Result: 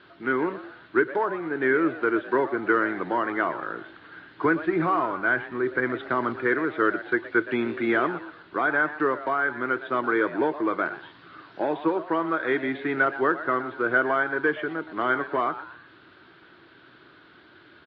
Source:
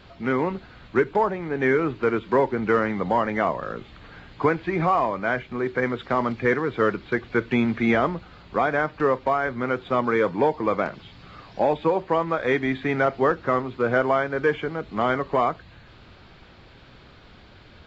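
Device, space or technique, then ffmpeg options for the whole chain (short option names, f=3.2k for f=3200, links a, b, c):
kitchen radio: -filter_complex "[0:a]asettb=1/sr,asplit=3[a][b][c];[a]atrim=end=4.454[d];[b]atrim=start=4.45:end=6.41,asetpts=PTS-STARTPTS,afade=t=in:d=0.004:c=qsin,afade=t=out:st=1.956:d=0.004:c=qsin,lowshelf=f=130:g=10[e];[c]atrim=start=6.406[f];[d][e]acrossfade=d=0.004:c1=hsin:c2=qsin[g];[g][f]acrossfade=d=0.004:c1=qsin:c2=hsin,asplit=4[h][i][j][k];[i]adelay=119,afreqshift=150,volume=-14dB[l];[j]adelay=238,afreqshift=300,volume=-23.4dB[m];[k]adelay=357,afreqshift=450,volume=-32.7dB[n];[h][l][m][n]amix=inputs=4:normalize=0,highpass=200,equalizer=f=210:t=q:w=4:g=-9,equalizer=f=330:t=q:w=4:g=8,equalizer=f=520:t=q:w=4:g=-6,equalizer=f=780:t=q:w=4:g=-5,equalizer=f=1.5k:t=q:w=4:g=8,equalizer=f=2.4k:t=q:w=4:g=-5,lowpass=f=4k:w=0.5412,lowpass=f=4k:w=1.3066,volume=-2.5dB"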